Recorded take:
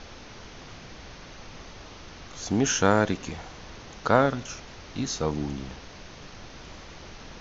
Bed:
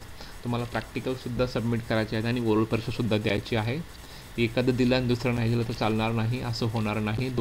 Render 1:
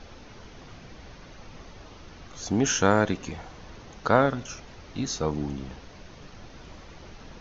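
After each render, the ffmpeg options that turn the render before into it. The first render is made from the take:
ffmpeg -i in.wav -af "afftdn=noise_reduction=6:noise_floor=-45" out.wav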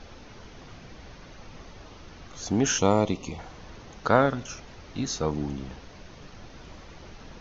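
ffmpeg -i in.wav -filter_complex "[0:a]asettb=1/sr,asplit=3[link_01][link_02][link_03];[link_01]atrim=end=2.784[link_04];[link_02]atrim=start=2.78:end=3.39,asetpts=PTS-STARTPTS,afade=type=in:duration=0.004:curve=qsin,afade=type=out:start_time=0.606:duration=0.004:curve=qsin,asuperstop=centerf=1600:order=4:qfactor=1.9[link_05];[link_03]atrim=start=3.386[link_06];[link_04][link_05]acrossfade=duration=0.004:curve1=hsin:curve2=qsin[link_07];[link_07][link_06]acrossfade=duration=0.004:curve1=qsin:curve2=hsin" out.wav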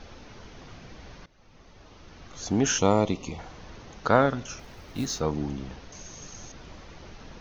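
ffmpeg -i in.wav -filter_complex "[0:a]asettb=1/sr,asplit=3[link_01][link_02][link_03];[link_01]atrim=end=4.594[link_04];[link_02]atrim=start=4.59:end=5.2,asetpts=PTS-STARTPTS,afade=type=in:duration=0.004:curve=qsin,afade=type=out:start_time=0.606:duration=0.004:curve=qsin,acrusher=bits=5:mode=log:mix=0:aa=0.000001[link_05];[link_03]atrim=start=5.196[link_06];[link_04][link_05]acrossfade=duration=0.004:curve1=hsin:curve2=qsin[link_07];[link_07][link_06]acrossfade=duration=0.004:curve1=qsin:curve2=hsin,asettb=1/sr,asplit=3[link_08][link_09][link_10];[link_08]atrim=end=5.924[link_11];[link_09]atrim=start=5.92:end=6.52,asetpts=PTS-STARTPTS,afade=type=in:duration=0.004:curve=qsin,afade=type=out:start_time=0.596:duration=0.004:curve=qsin,lowpass=frequency=6600:width_type=q:width=16[link_12];[link_10]atrim=start=6.516[link_13];[link_11][link_12]acrossfade=duration=0.004:curve1=hsin:curve2=qsin[link_14];[link_14][link_13]acrossfade=duration=0.004:curve1=qsin:curve2=hsin,asplit=2[link_15][link_16];[link_15]atrim=end=1.26,asetpts=PTS-STARTPTS,afade=type=out:start_time=1.256:duration=0.004:curve=hsin:silence=0.112202[link_17];[link_16]atrim=start=1.26,asetpts=PTS-STARTPTS,afade=type=in:duration=1.19:silence=0.112202[link_18];[link_17][link_18]concat=n=2:v=0:a=1" out.wav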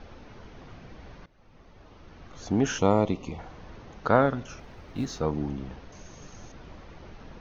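ffmpeg -i in.wav -af "lowpass=frequency=2100:poles=1" out.wav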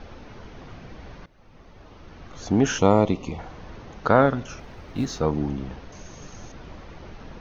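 ffmpeg -i in.wav -af "volume=4.5dB,alimiter=limit=-3dB:level=0:latency=1" out.wav

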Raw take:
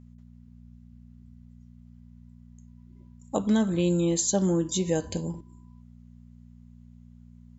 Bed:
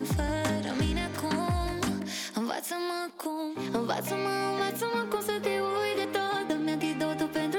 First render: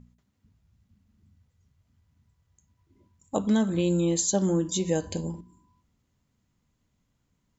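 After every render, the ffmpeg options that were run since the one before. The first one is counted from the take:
ffmpeg -i in.wav -af "bandreject=frequency=60:width_type=h:width=4,bandreject=frequency=120:width_type=h:width=4,bandreject=frequency=180:width_type=h:width=4,bandreject=frequency=240:width_type=h:width=4" out.wav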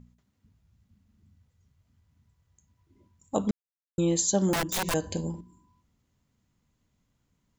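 ffmpeg -i in.wav -filter_complex "[0:a]asettb=1/sr,asplit=3[link_01][link_02][link_03];[link_01]atrim=end=4.534[link_04];[link_02]atrim=start=4.53:end=4.94,asetpts=PTS-STARTPTS,afade=type=in:duration=0.004:curve=qsin,afade=type=out:start_time=0.406:duration=0.004:curve=qsin,aeval=exprs='(mod(14.1*val(0)+1,2)-1)/14.1':channel_layout=same[link_05];[link_03]atrim=start=4.936[link_06];[link_04][link_05]acrossfade=duration=0.004:curve1=hsin:curve2=qsin[link_07];[link_07][link_06]acrossfade=duration=0.004:curve1=qsin:curve2=hsin,asplit=3[link_08][link_09][link_10];[link_08]atrim=end=3.51,asetpts=PTS-STARTPTS,afade=type=out:start_time=3.506:duration=0.004:curve=hsin[link_11];[link_09]atrim=start=3.51:end=3.98,asetpts=PTS-STARTPTS,volume=0[link_12];[link_10]atrim=start=3.98,asetpts=PTS-STARTPTS,afade=type=in:duration=0.004:curve=hsin[link_13];[link_11][link_12][link_13]concat=n=3:v=0:a=1" out.wav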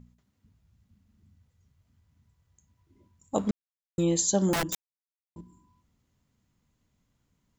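ffmpeg -i in.wav -filter_complex "[0:a]asplit=3[link_01][link_02][link_03];[link_01]afade=type=out:start_time=3.36:duration=0.02[link_04];[link_02]aeval=exprs='sgn(val(0))*max(abs(val(0))-0.00376,0)':channel_layout=same,afade=type=in:start_time=3.36:duration=0.02,afade=type=out:start_time=4.02:duration=0.02[link_05];[link_03]afade=type=in:start_time=4.02:duration=0.02[link_06];[link_04][link_05][link_06]amix=inputs=3:normalize=0,asplit=3[link_07][link_08][link_09];[link_07]atrim=end=4.75,asetpts=PTS-STARTPTS,afade=type=out:start_time=4.746:duration=0.004:curve=hsin[link_10];[link_08]atrim=start=4.75:end=5.36,asetpts=PTS-STARTPTS,volume=0[link_11];[link_09]atrim=start=5.36,asetpts=PTS-STARTPTS,afade=type=in:duration=0.004:curve=hsin[link_12];[link_10][link_11][link_12]concat=n=3:v=0:a=1" out.wav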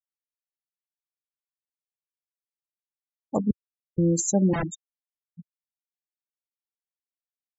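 ffmpeg -i in.wav -af "afftfilt=real='re*gte(hypot(re,im),0.0562)':imag='im*gte(hypot(re,im),0.0562)':win_size=1024:overlap=0.75,equalizer=frequency=91:width_type=o:width=2.4:gain=9" out.wav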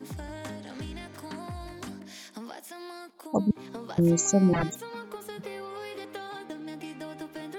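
ffmpeg -i in.wav -i bed.wav -filter_complex "[1:a]volume=-10dB[link_01];[0:a][link_01]amix=inputs=2:normalize=0" out.wav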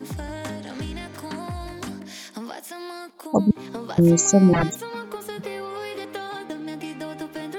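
ffmpeg -i in.wav -af "volume=6.5dB" out.wav

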